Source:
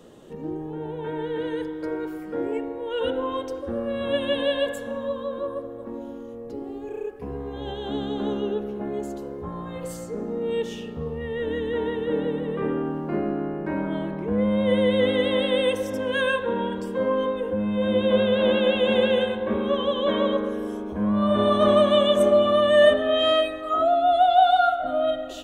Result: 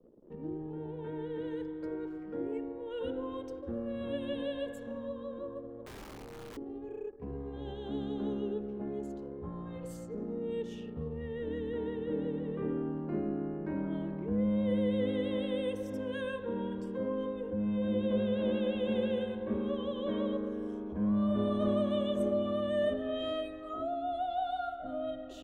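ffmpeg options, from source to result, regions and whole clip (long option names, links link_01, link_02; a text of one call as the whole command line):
ffmpeg -i in.wav -filter_complex "[0:a]asettb=1/sr,asplit=3[link_01][link_02][link_03];[link_01]atrim=end=5.854[link_04];[link_02]atrim=start=5.85:end=6.57,asetpts=PTS-STARTPTS,afade=type=in:duration=0.004:curve=qsin,afade=type=out:start_time=0.716:duration=0.004:curve=qsin,aemphasis=mode=reproduction:type=75kf,aeval=exprs='(mod(39.8*val(0)+1,2)-1)/39.8':channel_layout=same,asplit=2[link_05][link_06];[link_06]adelay=28,volume=-6dB[link_07];[link_05][link_07]amix=inputs=2:normalize=0,atrim=end_sample=31752[link_08];[link_03]atrim=start=6.566[link_09];[link_04][link_08]acrossfade=duration=0.004:curve1=hsin:curve2=qsin[link_10];[link_10][link_09]acrossfade=duration=0.004:curve1=qsin:curve2=hsin,anlmdn=0.1,acrossover=split=420[link_11][link_12];[link_12]acompressor=threshold=-55dB:ratio=1.5[link_13];[link_11][link_13]amix=inputs=2:normalize=0,volume=-6dB" out.wav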